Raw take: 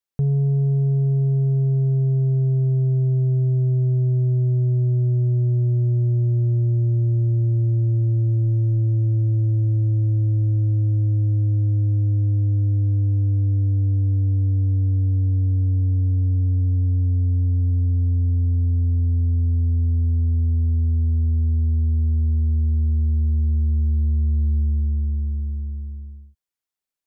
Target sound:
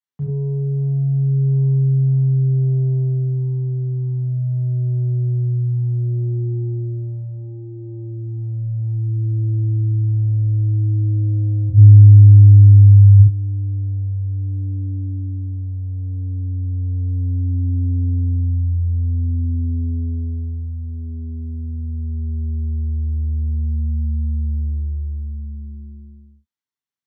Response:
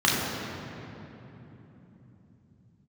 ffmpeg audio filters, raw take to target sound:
-filter_complex "[0:a]asplit=3[s0][s1][s2];[s0]afade=t=out:st=11.69:d=0.02[s3];[s1]asubboost=boost=6.5:cutoff=200,afade=t=in:st=11.69:d=0.02,afade=t=out:st=13.18:d=0.02[s4];[s2]afade=t=in:st=13.18:d=0.02[s5];[s3][s4][s5]amix=inputs=3:normalize=0[s6];[1:a]atrim=start_sample=2205,afade=t=out:st=0.16:d=0.01,atrim=end_sample=7497[s7];[s6][s7]afir=irnorm=-1:irlink=0,volume=0.126"

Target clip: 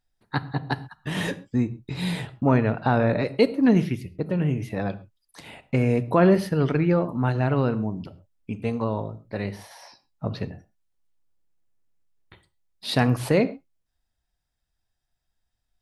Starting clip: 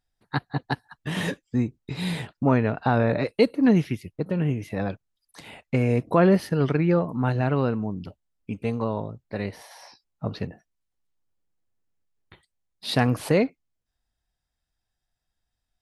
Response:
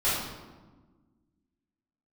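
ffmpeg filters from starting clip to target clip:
-filter_complex "[0:a]asplit=2[s0][s1];[1:a]atrim=start_sample=2205,atrim=end_sample=6174,lowshelf=f=360:g=7.5[s2];[s1][s2]afir=irnorm=-1:irlink=0,volume=0.0501[s3];[s0][s3]amix=inputs=2:normalize=0"

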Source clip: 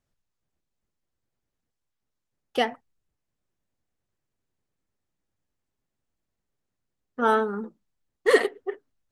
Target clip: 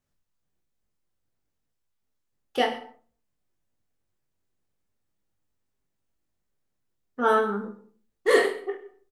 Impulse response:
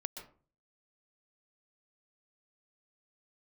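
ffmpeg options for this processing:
-filter_complex "[0:a]aecho=1:1:20|43|69.45|99.87|134.8:0.631|0.398|0.251|0.158|0.1,asplit=2[s0][s1];[1:a]atrim=start_sample=2205,highshelf=f=8900:g=9[s2];[s1][s2]afir=irnorm=-1:irlink=0,volume=0.447[s3];[s0][s3]amix=inputs=2:normalize=0,volume=0.596"

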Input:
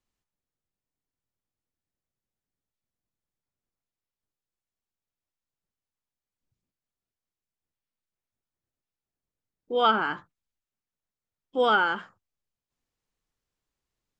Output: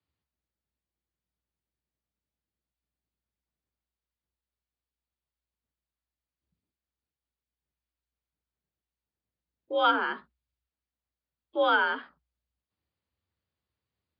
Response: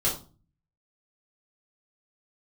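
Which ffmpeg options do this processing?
-af "afreqshift=61,volume=0.841" -ar 11025 -c:a libmp3lame -b:a 40k

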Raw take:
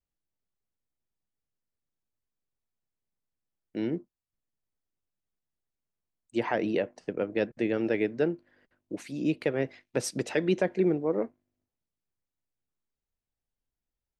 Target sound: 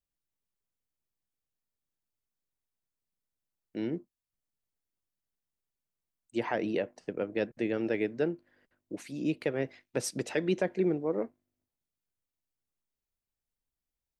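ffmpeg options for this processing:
-af "highshelf=f=8000:g=4.5,volume=0.708"

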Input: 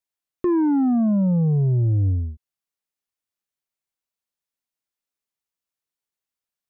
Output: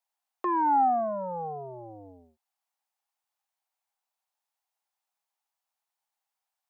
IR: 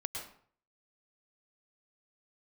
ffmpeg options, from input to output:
-af "highpass=f=800:t=q:w=4.9"

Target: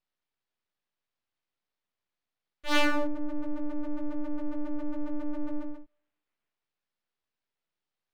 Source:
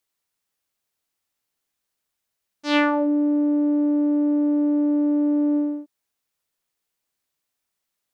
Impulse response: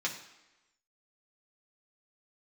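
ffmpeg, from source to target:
-filter_complex "[0:a]highpass=f=370:t=q:w=0.5412,highpass=f=370:t=q:w=1.307,lowpass=f=3200:t=q:w=0.5176,lowpass=f=3200:t=q:w=0.7071,lowpass=f=3200:t=q:w=1.932,afreqshift=-290,asplit=2[s0][s1];[1:a]atrim=start_sample=2205,adelay=9[s2];[s1][s2]afir=irnorm=-1:irlink=0,volume=0.0501[s3];[s0][s3]amix=inputs=2:normalize=0,aeval=exprs='abs(val(0))':c=same"

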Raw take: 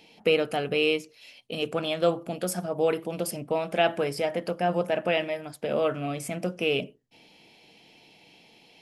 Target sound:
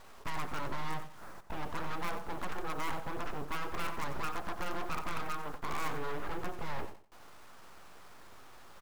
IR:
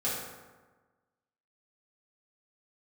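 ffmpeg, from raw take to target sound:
-filter_complex "[0:a]equalizer=f=590:w=0.33:g=-8,asplit=2[s0][s1];[s1]acompressor=threshold=0.0112:ratio=6,volume=0.75[s2];[s0][s2]amix=inputs=2:normalize=0,aeval=exprs='abs(val(0))':c=same,lowpass=f=1300:t=q:w=2.1,acrusher=bits=7:dc=4:mix=0:aa=0.000001,volume=42.2,asoftclip=hard,volume=0.0237,aecho=1:1:91|182|273:0.266|0.0612|0.0141,volume=1.26"

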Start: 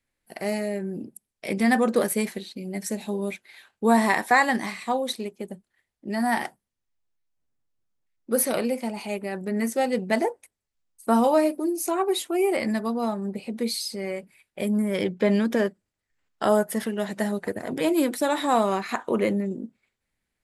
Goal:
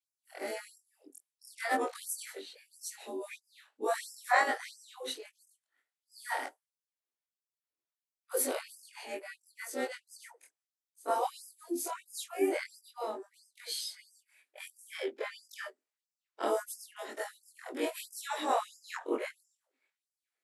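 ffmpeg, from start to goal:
-filter_complex "[0:a]afftfilt=real='re':imag='-im':win_size=2048:overlap=0.75,asplit=2[s0][s1];[s1]asetrate=33038,aresample=44100,atempo=1.33484,volume=0.398[s2];[s0][s2]amix=inputs=2:normalize=0,afftfilt=real='re*gte(b*sr/1024,220*pow(4900/220,0.5+0.5*sin(2*PI*1.5*pts/sr)))':imag='im*gte(b*sr/1024,220*pow(4900/220,0.5+0.5*sin(2*PI*1.5*pts/sr)))':win_size=1024:overlap=0.75,volume=0.668"

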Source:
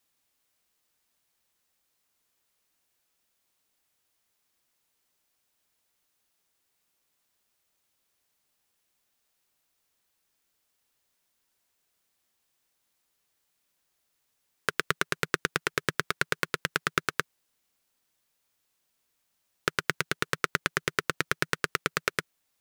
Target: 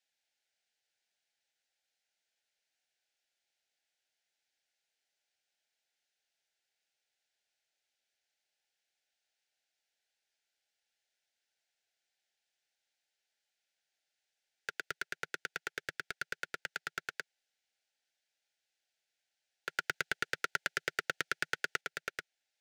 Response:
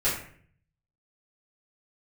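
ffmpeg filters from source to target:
-filter_complex "[0:a]asuperstop=centerf=1100:order=8:qfactor=2.1,acrossover=split=540 7200:gain=0.141 1 0.112[s0][s1][s2];[s0][s1][s2]amix=inputs=3:normalize=0,asoftclip=type=hard:threshold=0.0708,asettb=1/sr,asplit=3[s3][s4][s5];[s3]atrim=end=19.694[s6];[s4]atrim=start=19.69:end=21.81,asetpts=PTS-STARTPTS,afade=t=in:d=0.004:c=qsin,afade=t=out:st=2.116:d=0.004:c=qsin,acontrast=39[s7];[s5]atrim=start=21.806[s8];[s6][s7]acrossfade=d=0.004:c1=hsin:c2=qsin[s9];[s9][s8]acrossfade=d=0.004:c1=qsin:c2=hsin,volume=0.596"

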